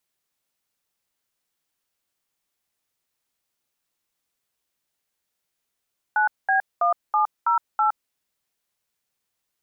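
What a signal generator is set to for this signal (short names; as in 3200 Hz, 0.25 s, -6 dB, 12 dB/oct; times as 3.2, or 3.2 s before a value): DTMF "9B1708", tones 0.115 s, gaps 0.211 s, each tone -19.5 dBFS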